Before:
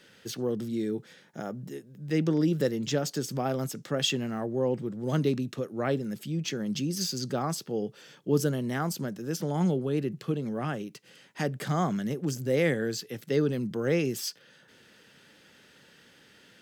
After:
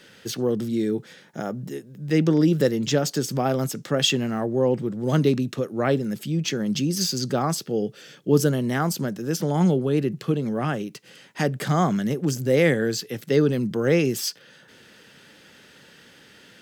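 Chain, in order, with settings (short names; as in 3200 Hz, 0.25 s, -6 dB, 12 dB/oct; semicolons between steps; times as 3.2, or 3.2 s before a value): 7.62–8.31 bell 950 Hz -9.5 dB 0.43 oct; gain +6.5 dB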